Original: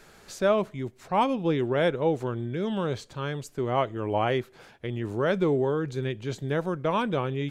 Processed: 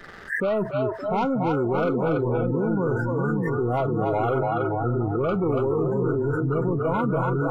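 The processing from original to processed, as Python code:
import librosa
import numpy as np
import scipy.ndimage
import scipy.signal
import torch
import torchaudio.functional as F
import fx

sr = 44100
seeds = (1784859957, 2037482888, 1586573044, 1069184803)

y = fx.freq_compress(x, sr, knee_hz=1100.0, ratio=4.0)
y = fx.peak_eq(y, sr, hz=1100.0, db=-8.0, octaves=0.21)
y = fx.leveller(y, sr, passes=2)
y = fx.echo_split(y, sr, split_hz=390.0, low_ms=614, high_ms=285, feedback_pct=52, wet_db=-3)
y = fx.noise_reduce_blind(y, sr, reduce_db=28)
y = fx.env_flatten(y, sr, amount_pct=70)
y = y * 10.0 ** (-6.5 / 20.0)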